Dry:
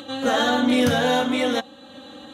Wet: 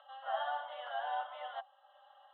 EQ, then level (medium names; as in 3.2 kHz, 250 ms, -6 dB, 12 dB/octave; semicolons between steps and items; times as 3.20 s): Chebyshev band-pass 600–3100 Hz, order 5; peaking EQ 1.4 kHz -10 dB 1.9 oct; static phaser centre 1 kHz, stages 4; -4.5 dB